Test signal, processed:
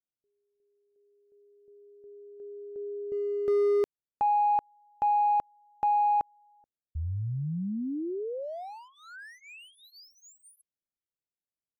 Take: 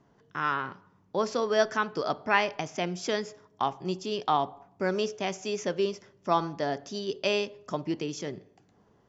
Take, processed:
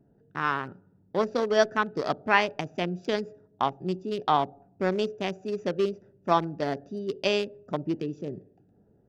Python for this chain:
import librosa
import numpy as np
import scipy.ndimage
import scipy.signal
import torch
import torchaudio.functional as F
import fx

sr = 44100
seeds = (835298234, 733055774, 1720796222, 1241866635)

y = fx.wiener(x, sr, points=41)
y = F.gain(torch.from_numpy(y), 3.0).numpy()